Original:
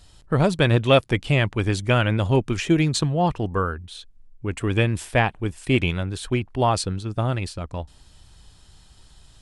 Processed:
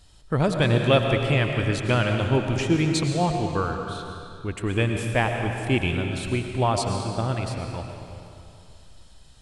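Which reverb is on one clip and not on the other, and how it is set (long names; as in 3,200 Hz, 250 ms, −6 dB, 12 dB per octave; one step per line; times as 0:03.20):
comb and all-pass reverb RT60 2.6 s, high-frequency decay 0.9×, pre-delay 70 ms, DRR 3.5 dB
level −3 dB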